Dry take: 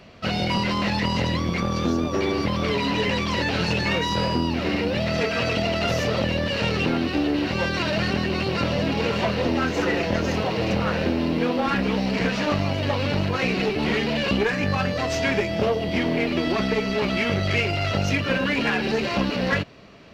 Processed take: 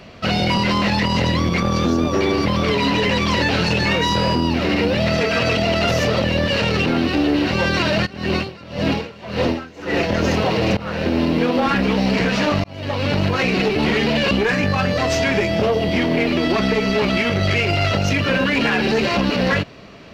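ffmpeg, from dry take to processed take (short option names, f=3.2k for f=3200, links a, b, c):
-filter_complex "[0:a]asplit=3[a][b][c];[a]afade=t=out:st=8.05:d=0.02[d];[b]aeval=exprs='val(0)*pow(10,-23*(0.5-0.5*cos(2*PI*1.8*n/s))/20)':c=same,afade=t=in:st=8.05:d=0.02,afade=t=out:st=10.08:d=0.02[e];[c]afade=t=in:st=10.08:d=0.02[f];[d][e][f]amix=inputs=3:normalize=0,asplit=3[g][h][i];[g]atrim=end=10.77,asetpts=PTS-STARTPTS,afade=t=out:st=10.766:d=0.004:c=hsin:silence=0.125893[j];[h]atrim=start=10.77:end=12.64,asetpts=PTS-STARTPTS,afade=t=in:d=0.45:silence=0.125893,afade=t=out:st=1.866:d=0.004:c=hsin[k];[i]atrim=start=12.64,asetpts=PTS-STARTPTS,afade=t=in:d=0.56[l];[j][k][l]concat=n=3:v=0:a=1,alimiter=limit=-15.5dB:level=0:latency=1:release=41,volume=6.5dB"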